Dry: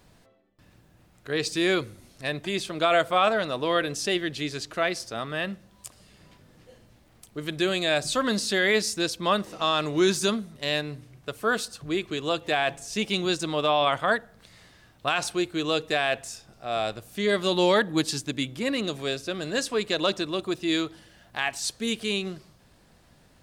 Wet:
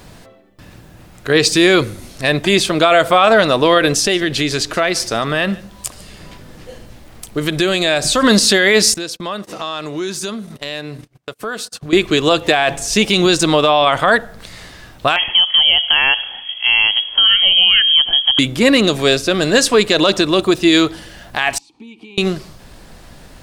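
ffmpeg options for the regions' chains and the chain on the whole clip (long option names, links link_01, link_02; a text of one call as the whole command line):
ffmpeg -i in.wav -filter_complex "[0:a]asettb=1/sr,asplit=3[link_01][link_02][link_03];[link_01]atrim=end=3.994[link_04];[link_02]atrim=start=3.99:end=8.23,asetpts=PTS-STARTPTS,afade=type=in:duration=0.004:curve=qsin,afade=type=out:start_time=4.236:duration=0.004:curve=qsin,acompressor=threshold=-30dB:ratio=3:attack=3.2:release=140:knee=1:detection=peak,aecho=1:1:146:0.075,atrim=end_sample=186984[link_05];[link_03]atrim=start=8.226[link_06];[link_04][link_05]acrossfade=duration=0.004:curve1=hsin:curve2=qsin[link_07];[link_07][link_06]acrossfade=duration=0.004:curve1=qsin:curve2=hsin,asettb=1/sr,asplit=3[link_08][link_09][link_10];[link_08]atrim=end=8.944[link_11];[link_09]atrim=start=8.94:end=11.93,asetpts=PTS-STARTPTS,afade=type=in:duration=0.004:curve=qsin,afade=type=out:start_time=2.986:duration=0.004:curve=qsin,highpass=110,acompressor=threshold=-43dB:ratio=3:attack=3.2:release=140:knee=1:detection=peak,agate=range=-33dB:threshold=-49dB:ratio=16:release=100:detection=peak[link_12];[link_10]atrim=start=11.926[link_13];[link_11][link_12]acrossfade=duration=0.004:curve1=hsin:curve2=qsin[link_14];[link_14][link_13]acrossfade=duration=0.004:curve1=qsin:curve2=hsin,asettb=1/sr,asplit=3[link_15][link_16][link_17];[link_15]atrim=end=15.164[link_18];[link_16]atrim=start=15.16:end=18.39,asetpts=PTS-STARTPTS,afade=type=in:duration=0.004:curve=qsin,afade=type=out:start_time=3.226:duration=0.004:curve=qsin,equalizer=frequency=150:width=0.39:gain=12.5,acompressor=threshold=-26dB:ratio=6:attack=3.2:release=140:knee=1:detection=peak,lowpass=frequency=2900:width_type=q:width=0.5098,lowpass=frequency=2900:width_type=q:width=0.6013,lowpass=frequency=2900:width_type=q:width=0.9,lowpass=frequency=2900:width_type=q:width=2.563,afreqshift=-3400[link_19];[link_17]atrim=start=18.386[link_20];[link_18][link_19]acrossfade=duration=0.004:curve1=hsin:curve2=qsin[link_21];[link_21][link_20]acrossfade=duration=0.004:curve1=qsin:curve2=hsin,asettb=1/sr,asplit=3[link_22][link_23][link_24];[link_22]atrim=end=21.584[link_25];[link_23]atrim=start=21.58:end=22.18,asetpts=PTS-STARTPTS,afade=type=in:duration=0.004:curve=qsin,afade=type=out:start_time=0.596:duration=0.004:curve=qsin,bandreject=frequency=2100:width=5.7,acompressor=threshold=-35dB:ratio=8:attack=3.2:release=140:knee=1:detection=peak,asplit=3[link_26][link_27][link_28];[link_26]bandpass=frequency=300:width_type=q:width=8,volume=0dB[link_29];[link_27]bandpass=frequency=870:width_type=q:width=8,volume=-6dB[link_30];[link_28]bandpass=frequency=2240:width_type=q:width=8,volume=-9dB[link_31];[link_29][link_30][link_31]amix=inputs=3:normalize=0[link_32];[link_24]atrim=start=22.176[link_33];[link_25][link_32]acrossfade=duration=0.004:curve1=hsin:curve2=qsin[link_34];[link_34][link_33]acrossfade=duration=0.004:curve1=qsin:curve2=hsin,asubboost=boost=2.5:cutoff=52,alimiter=level_in=18dB:limit=-1dB:release=50:level=0:latency=1,volume=-1dB" out.wav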